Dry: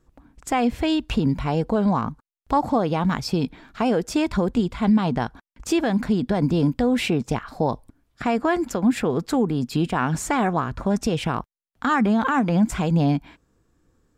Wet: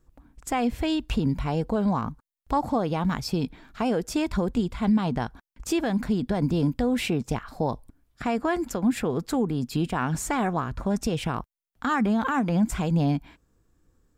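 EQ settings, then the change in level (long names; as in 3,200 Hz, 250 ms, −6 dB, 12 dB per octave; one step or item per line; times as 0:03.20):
low-shelf EQ 73 Hz +7.5 dB
high-shelf EQ 10,000 Hz +8.5 dB
−4.5 dB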